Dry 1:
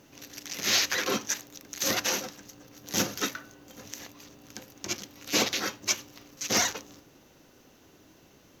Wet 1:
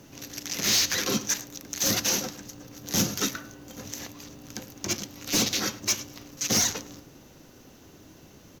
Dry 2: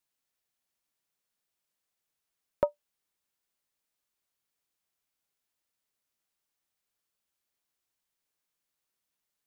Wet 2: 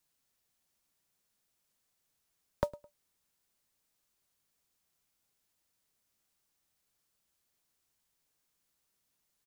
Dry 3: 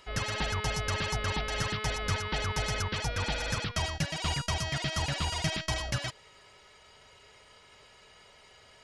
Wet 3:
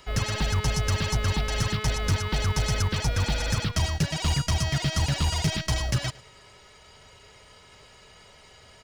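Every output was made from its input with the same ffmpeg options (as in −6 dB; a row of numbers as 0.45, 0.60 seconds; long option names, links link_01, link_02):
-filter_complex "[0:a]bass=frequency=250:gain=5,treble=frequency=4000:gain=9,acrusher=bits=6:mode=log:mix=0:aa=0.000001,highshelf=frequency=3700:gain=-8.5,asplit=2[link_01][link_02];[link_02]aecho=0:1:106|212:0.0794|0.0135[link_03];[link_01][link_03]amix=inputs=2:normalize=0,acrossover=split=280|3000[link_04][link_05][link_06];[link_05]acompressor=threshold=-35dB:ratio=6[link_07];[link_04][link_07][link_06]amix=inputs=3:normalize=0,asoftclip=type=hard:threshold=-22.5dB,volume=4.5dB"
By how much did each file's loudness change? +2.0, −5.0, +5.0 LU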